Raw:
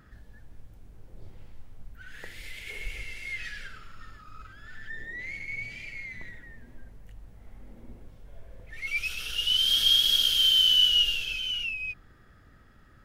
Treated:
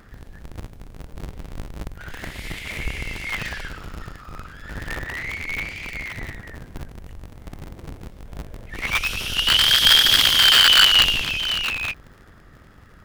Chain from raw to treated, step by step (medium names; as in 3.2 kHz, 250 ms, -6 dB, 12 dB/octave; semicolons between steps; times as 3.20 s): cycle switcher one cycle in 2, inverted; trim +7.5 dB